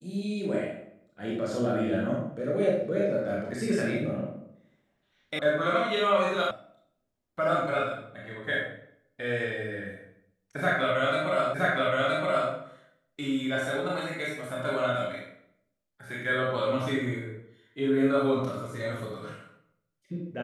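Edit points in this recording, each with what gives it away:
5.39 s: sound stops dead
6.51 s: sound stops dead
11.54 s: repeat of the last 0.97 s

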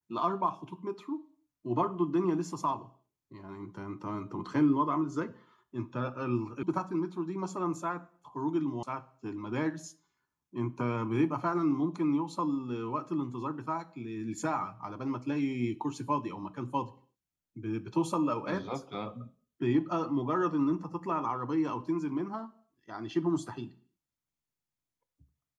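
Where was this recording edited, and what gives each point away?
6.63 s: sound stops dead
8.83 s: sound stops dead

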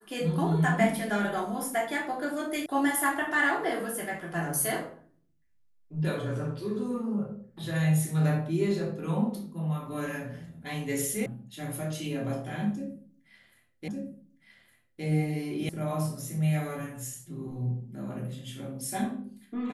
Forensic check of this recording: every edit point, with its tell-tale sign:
2.66 s: sound stops dead
11.26 s: sound stops dead
13.88 s: repeat of the last 1.16 s
15.69 s: sound stops dead

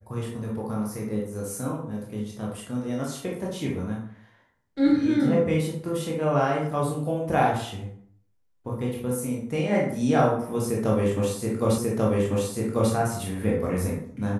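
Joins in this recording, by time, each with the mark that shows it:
11.78 s: repeat of the last 1.14 s

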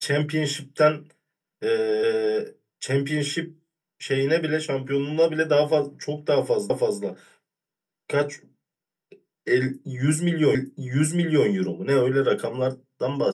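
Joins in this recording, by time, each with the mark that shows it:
2.03 s: repeat of the last 0.35 s
6.70 s: repeat of the last 0.32 s
10.55 s: repeat of the last 0.92 s

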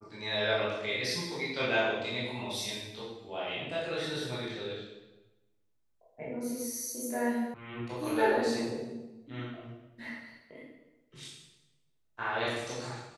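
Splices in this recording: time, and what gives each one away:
7.54 s: sound stops dead

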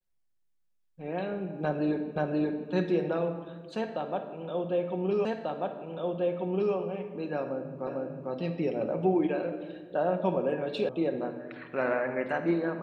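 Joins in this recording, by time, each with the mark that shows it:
2.16 s: repeat of the last 0.53 s
5.25 s: repeat of the last 1.49 s
7.87 s: repeat of the last 0.45 s
10.89 s: sound stops dead

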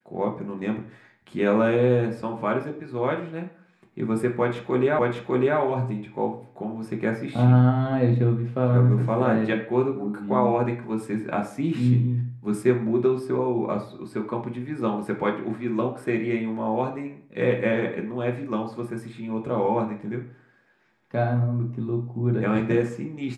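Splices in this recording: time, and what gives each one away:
4.99 s: repeat of the last 0.6 s

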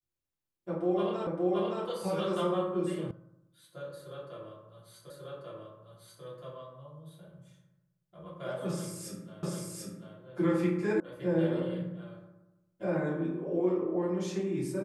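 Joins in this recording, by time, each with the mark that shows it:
1.27 s: repeat of the last 0.57 s
3.11 s: sound stops dead
5.10 s: repeat of the last 1.14 s
9.43 s: repeat of the last 0.74 s
11.00 s: sound stops dead

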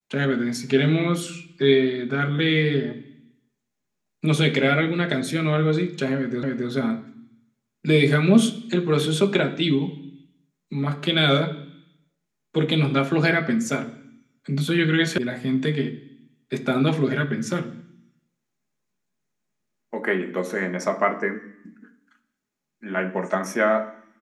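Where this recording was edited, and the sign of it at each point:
6.43 s: repeat of the last 0.27 s
15.18 s: sound stops dead

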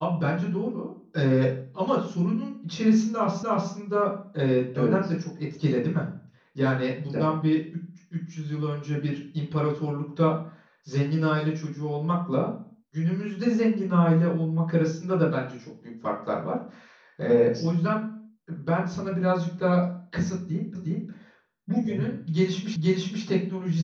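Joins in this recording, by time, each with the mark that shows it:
3.43 s: repeat of the last 0.3 s
20.75 s: repeat of the last 0.36 s
22.76 s: repeat of the last 0.48 s

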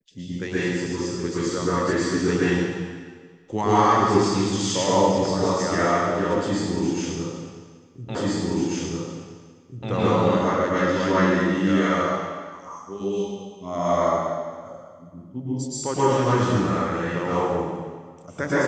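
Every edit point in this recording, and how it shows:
8.15 s: repeat of the last 1.74 s

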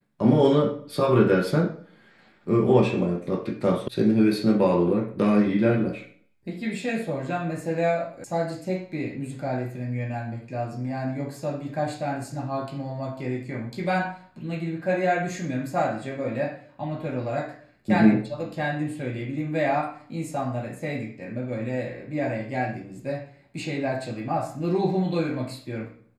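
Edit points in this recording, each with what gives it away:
3.88 s: sound stops dead
8.24 s: sound stops dead

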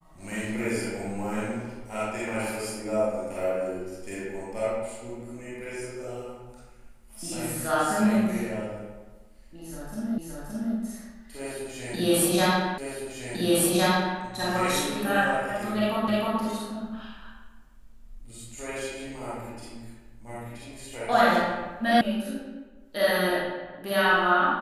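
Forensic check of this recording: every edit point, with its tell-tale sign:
10.18 s: repeat of the last 0.57 s
12.78 s: repeat of the last 1.41 s
16.08 s: repeat of the last 0.31 s
22.01 s: sound stops dead

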